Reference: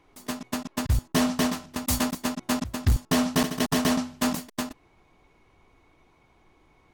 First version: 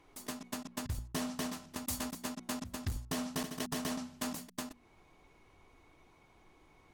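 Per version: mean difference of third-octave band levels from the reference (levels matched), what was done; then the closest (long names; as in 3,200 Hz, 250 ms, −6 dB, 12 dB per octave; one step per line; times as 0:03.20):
3.0 dB: parametric band 9,900 Hz +4 dB 1.6 octaves
mains-hum notches 60/120/180/240 Hz
downward compressor 2 to 1, threshold −41 dBFS, peak gain reduction 13 dB
level −2.5 dB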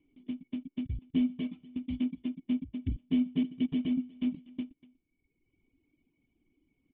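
17.0 dB: on a send: single-tap delay 241 ms −13 dB
on the sum: reverb reduction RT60 1.3 s
formant resonators in series i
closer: first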